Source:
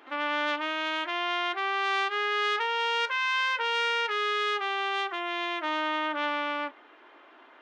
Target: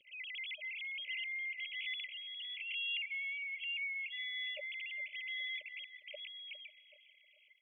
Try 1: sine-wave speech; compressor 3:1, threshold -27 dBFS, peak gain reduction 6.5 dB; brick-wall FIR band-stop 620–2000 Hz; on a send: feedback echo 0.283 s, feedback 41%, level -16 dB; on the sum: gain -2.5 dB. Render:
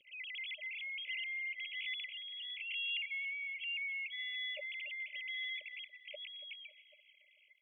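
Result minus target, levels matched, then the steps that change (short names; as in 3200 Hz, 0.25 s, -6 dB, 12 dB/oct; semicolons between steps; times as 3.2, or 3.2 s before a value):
echo 0.124 s early
change: feedback echo 0.407 s, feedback 41%, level -16 dB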